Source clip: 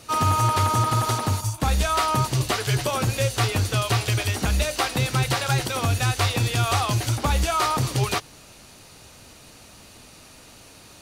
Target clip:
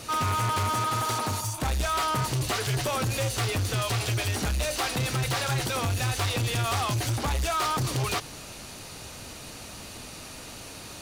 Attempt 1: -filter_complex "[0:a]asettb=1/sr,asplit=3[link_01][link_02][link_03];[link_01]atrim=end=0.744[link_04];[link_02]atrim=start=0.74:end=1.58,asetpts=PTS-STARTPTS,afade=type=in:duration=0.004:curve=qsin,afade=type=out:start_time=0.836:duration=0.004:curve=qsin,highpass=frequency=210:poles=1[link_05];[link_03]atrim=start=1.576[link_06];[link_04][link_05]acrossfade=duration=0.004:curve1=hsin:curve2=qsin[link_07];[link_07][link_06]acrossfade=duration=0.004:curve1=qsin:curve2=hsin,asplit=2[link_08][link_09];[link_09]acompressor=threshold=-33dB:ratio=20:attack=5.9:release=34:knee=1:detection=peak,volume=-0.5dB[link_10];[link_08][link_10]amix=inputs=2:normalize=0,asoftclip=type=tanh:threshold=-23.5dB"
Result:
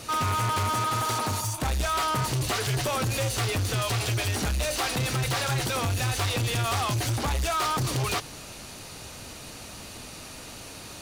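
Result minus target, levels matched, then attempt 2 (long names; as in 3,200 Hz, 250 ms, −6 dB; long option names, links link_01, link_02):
downward compressor: peak gain reduction −7.5 dB
-filter_complex "[0:a]asettb=1/sr,asplit=3[link_01][link_02][link_03];[link_01]atrim=end=0.744[link_04];[link_02]atrim=start=0.74:end=1.58,asetpts=PTS-STARTPTS,afade=type=in:duration=0.004:curve=qsin,afade=type=out:start_time=0.836:duration=0.004:curve=qsin,highpass=frequency=210:poles=1[link_05];[link_03]atrim=start=1.576[link_06];[link_04][link_05]acrossfade=duration=0.004:curve1=hsin:curve2=qsin[link_07];[link_07][link_06]acrossfade=duration=0.004:curve1=qsin:curve2=hsin,asplit=2[link_08][link_09];[link_09]acompressor=threshold=-41dB:ratio=20:attack=5.9:release=34:knee=1:detection=peak,volume=-0.5dB[link_10];[link_08][link_10]amix=inputs=2:normalize=0,asoftclip=type=tanh:threshold=-23.5dB"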